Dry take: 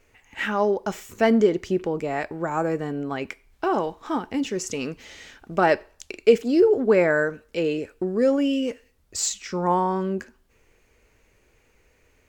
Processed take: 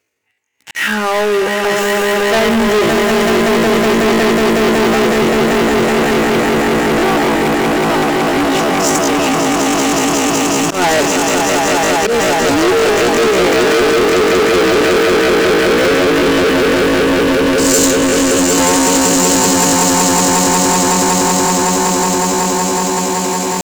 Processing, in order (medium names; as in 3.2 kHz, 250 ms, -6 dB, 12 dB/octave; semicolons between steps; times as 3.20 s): reverse; upward compressor, threshold -32 dBFS; reverse; high-pass 100 Hz 24 dB/octave; on a send: echo with a slow build-up 97 ms, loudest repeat 8, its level -4.5 dB; on the sum: tempo 0.52×; peaking EQ 340 Hz +2.5 dB; slow attack 149 ms; hum notches 50/100/150/200/250 Hz; waveshaping leveller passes 5; treble shelf 2.1 kHz +8.5 dB; trim -8.5 dB